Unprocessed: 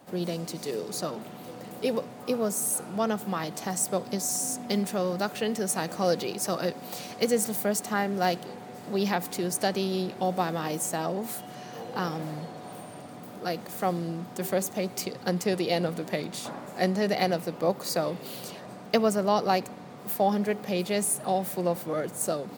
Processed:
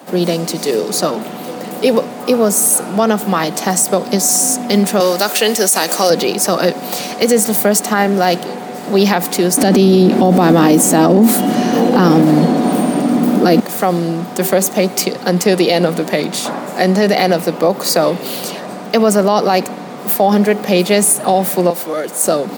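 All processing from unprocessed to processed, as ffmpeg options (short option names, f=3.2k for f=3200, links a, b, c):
-filter_complex "[0:a]asettb=1/sr,asplit=3[a][b][c];[a]atrim=end=5.004[d];[b]atrim=start=5:end=6.1,asetpts=PTS-STARTPTS,afade=t=in:d=0.004:c=qsin,afade=t=out:st=1.096:d=0.004:c=qsin,highpass=290,highshelf=f=3.5k:g=12[e];[c]atrim=start=6.096[f];[d][e]acrossfade=d=0.004:c1=hsin:c2=qsin[g];[g][f]acrossfade=d=0.004:c1=qsin:c2=hsin,asettb=1/sr,asplit=3[h][i][j];[h]atrim=end=9.574[k];[i]atrim=start=9.57:end=13.6,asetpts=PTS-STARTPTS,afade=t=in:d=0.004:c=qsin,afade=t=out:st=4.026:d=0.004:c=qsin,equalizer=f=250:w=1.3:g=14.5,acontrast=29[l];[j]atrim=start=13.596[m];[k][l]acrossfade=d=0.004:c1=hsin:c2=qsin[n];[n][m]acrossfade=d=0.004:c1=qsin:c2=hsin,asettb=1/sr,asplit=3[o][p][q];[o]atrim=end=21.704[r];[p]atrim=start=21.7:end=22.25,asetpts=PTS-STARTPTS,afade=t=in:d=0.004:c=qsin,afade=t=out:st=0.546:d=0.004:c=qsin,acrossover=split=270|3000[s][t][u];[t]acompressor=threshold=-43dB:ratio=1.5:attack=3.2:release=140:knee=2.83:detection=peak[v];[s][v][u]amix=inputs=3:normalize=0,bass=f=250:g=-14,treble=f=4k:g=0[w];[q]atrim=start=22.246[x];[r][w]acrossfade=d=0.004:c1=hsin:c2=qsin[y];[y][x]acrossfade=d=0.004:c1=qsin:c2=hsin,highpass=f=170:w=0.5412,highpass=f=170:w=1.3066,alimiter=level_in=17.5dB:limit=-1dB:release=50:level=0:latency=1,volume=-1dB"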